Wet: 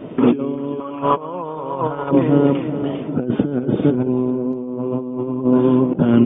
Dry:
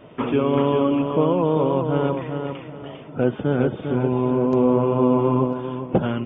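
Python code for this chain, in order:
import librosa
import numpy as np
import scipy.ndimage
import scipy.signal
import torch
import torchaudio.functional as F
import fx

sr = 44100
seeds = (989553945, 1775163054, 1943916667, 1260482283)

y = fx.over_compress(x, sr, threshold_db=-25.0, ratio=-0.5)
y = fx.peak_eq(y, sr, hz=fx.steps((0.0, 270.0), (0.8, 1100.0), (2.11, 270.0)), db=12.5, octaves=1.9)
y = y * 10.0 ** (-1.0 / 20.0)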